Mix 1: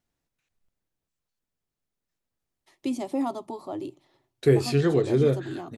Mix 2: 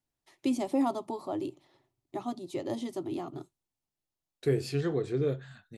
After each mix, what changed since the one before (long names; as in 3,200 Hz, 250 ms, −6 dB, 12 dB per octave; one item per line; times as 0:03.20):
first voice: entry −2.40 s
second voice −8.0 dB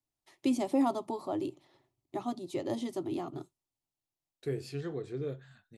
second voice −7.5 dB